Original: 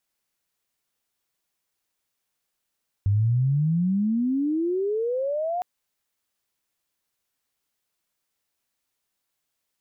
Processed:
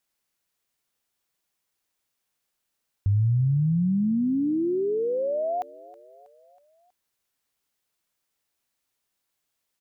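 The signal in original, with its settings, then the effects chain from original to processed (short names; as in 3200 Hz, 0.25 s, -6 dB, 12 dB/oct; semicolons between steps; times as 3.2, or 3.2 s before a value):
gliding synth tone sine, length 2.56 s, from 96.9 Hz, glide +35 st, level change -6.5 dB, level -17.5 dB
feedback echo 0.321 s, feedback 56%, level -21 dB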